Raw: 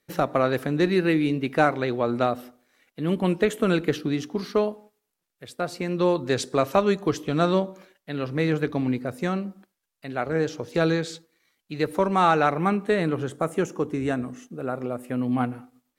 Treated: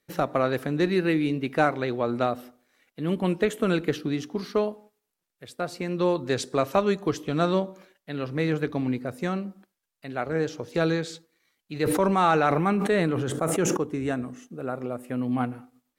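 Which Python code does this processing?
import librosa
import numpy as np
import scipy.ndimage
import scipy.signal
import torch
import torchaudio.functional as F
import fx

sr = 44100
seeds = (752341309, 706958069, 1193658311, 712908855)

y = fx.sustainer(x, sr, db_per_s=24.0, at=(11.73, 13.77))
y = F.gain(torch.from_numpy(y), -2.0).numpy()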